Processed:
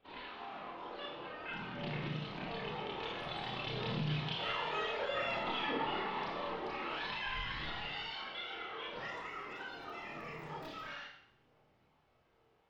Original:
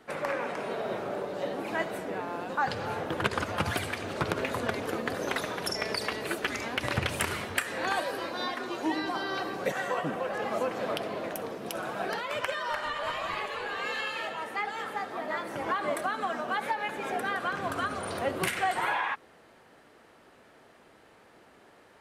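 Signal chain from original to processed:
source passing by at 0:09.45, 7 m/s, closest 5.6 metres
RIAA equalisation playback
downward compressor 3 to 1, threshold −43 dBFS, peak gain reduction 16 dB
phase shifter 0.3 Hz, delay 4.5 ms, feedback 32%
spring reverb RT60 1.1 s, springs 42/46/57 ms, chirp 65 ms, DRR −7 dB
low-pass filter sweep 2,000 Hz → 8,900 Hz, 0:15.42–0:16.31
wrong playback speed 45 rpm record played at 78 rpm
level −4 dB

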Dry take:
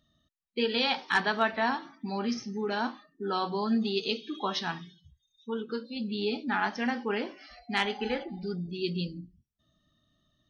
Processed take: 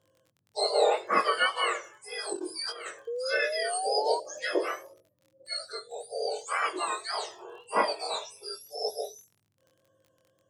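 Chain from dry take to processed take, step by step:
frequency axis turned over on the octave scale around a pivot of 1,400 Hz
Bessel low-pass filter 5,100 Hz, order 2
notch filter 2,400 Hz, Q 5.5
0:02.33–0:02.86: compressor whose output falls as the input rises −41 dBFS, ratio −0.5
0:05.72–0:06.36: high-shelf EQ 4,000 Hz −8.5 dB
surface crackle 24 per second −51 dBFS
chorus effect 1.8 Hz, delay 19 ms, depth 6.5 ms
0:03.07–0:04.20: sound drawn into the spectrogram rise 460–970 Hz −41 dBFS
level +8 dB

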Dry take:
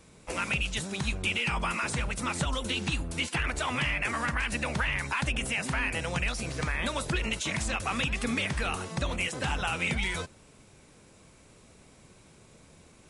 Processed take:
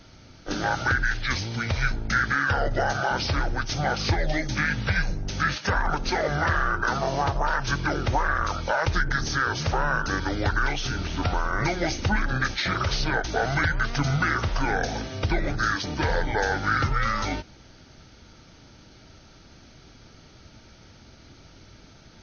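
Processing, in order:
notch filter 1,800 Hz, Q 8.7
change of speed 0.589×
level +6 dB

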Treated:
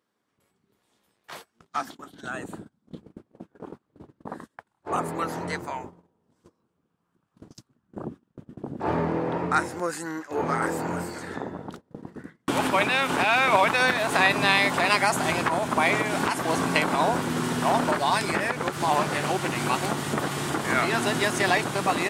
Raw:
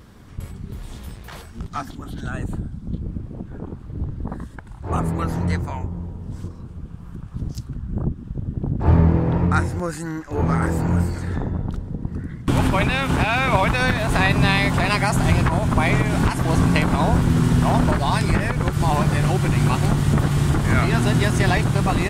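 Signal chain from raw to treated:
high-pass filter 350 Hz 12 dB per octave
noise gate −39 dBFS, range −25 dB
0:18.49–0:19.56: highs frequency-modulated by the lows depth 0.17 ms

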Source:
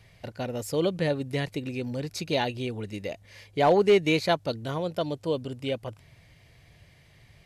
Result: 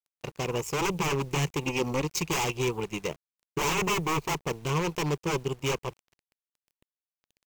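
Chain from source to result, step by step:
0:03.08–0:04.60: running median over 25 samples
wave folding −27 dBFS
0:01.64–0:02.20: comb filter 3.6 ms, depth 46%
power curve on the samples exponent 2
EQ curve with evenly spaced ripples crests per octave 0.74, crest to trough 11 dB
bit reduction 11 bits
level +8.5 dB

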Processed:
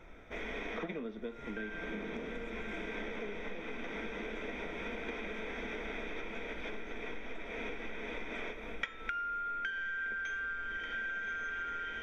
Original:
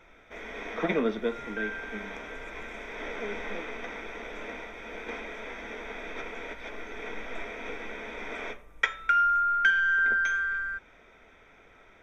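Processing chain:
low-shelf EQ 490 Hz +9.5 dB
feedback delay with all-pass diffusion 1,151 ms, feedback 68%, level −10 dB
downward compressor 16 to 1, threshold −34 dBFS, peak gain reduction 18.5 dB
dynamic equaliser 2,900 Hz, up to +6 dB, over −55 dBFS, Q 0.99
level −3 dB

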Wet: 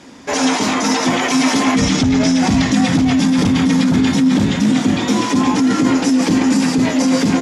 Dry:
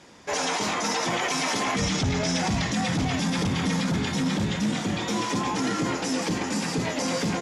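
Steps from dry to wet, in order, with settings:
parametric band 260 Hz +14 dB 0.31 octaves
in parallel at +2 dB: compressor whose output falls as the input rises −20 dBFS, ratio −0.5

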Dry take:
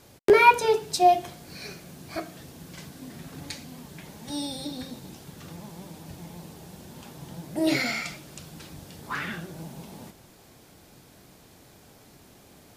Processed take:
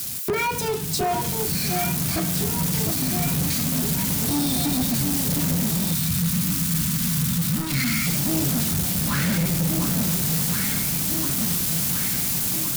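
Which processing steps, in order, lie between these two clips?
spike at every zero crossing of −19.5 dBFS
automatic gain control
brickwall limiter −10 dBFS, peak gain reduction 8 dB
low shelf with overshoot 300 Hz +12.5 dB, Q 1.5
delay that swaps between a low-pass and a high-pass 708 ms, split 1,200 Hz, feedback 76%, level −4.5 dB
soft clipping −17.5 dBFS, distortion −9 dB
0:05.94–0:08.07: flat-topped bell 510 Hz −12 dB
level −1.5 dB

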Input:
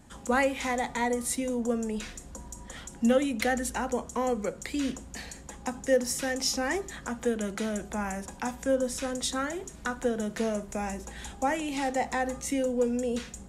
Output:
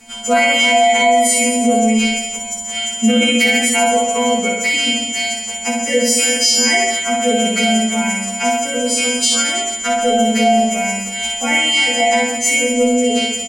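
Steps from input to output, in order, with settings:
every partial snapped to a pitch grid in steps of 2 semitones
low-shelf EQ 370 Hz −9.5 dB
stiff-string resonator 230 Hz, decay 0.25 s, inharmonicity 0.002
reverse bouncing-ball delay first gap 60 ms, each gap 1.2×, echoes 5
on a send at −1.5 dB: convolution reverb RT60 0.45 s, pre-delay 3 ms
on the sum: boost into a limiter +30 dB
level −3.5 dB

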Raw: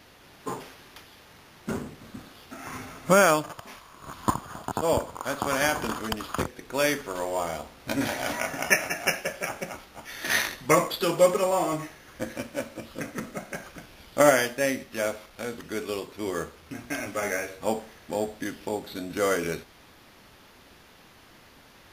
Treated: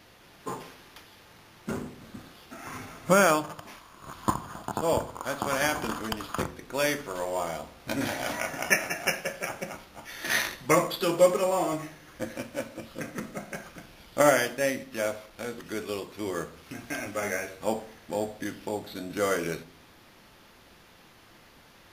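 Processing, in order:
convolution reverb RT60 0.60 s, pre-delay 6 ms, DRR 12.5 dB
0:15.66–0:17.75: one half of a high-frequency compander encoder only
level −2 dB

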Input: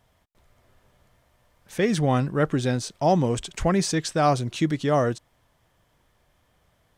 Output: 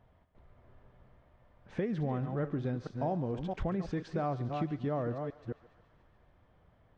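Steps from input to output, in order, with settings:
delay that plays each chunk backwards 221 ms, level −10 dB
head-to-tape spacing loss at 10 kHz 42 dB
downward compressor 4 to 1, threshold −35 dBFS, peak gain reduction 15 dB
feedback echo with a high-pass in the loop 142 ms, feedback 79%, high-pass 710 Hz, level −16 dB
level +2 dB

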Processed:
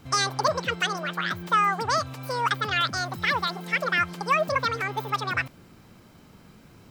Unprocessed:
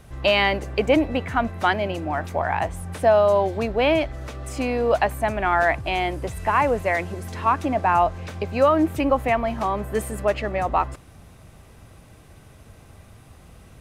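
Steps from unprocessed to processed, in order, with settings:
wrong playback speed 7.5 ips tape played at 15 ips
level −4.5 dB

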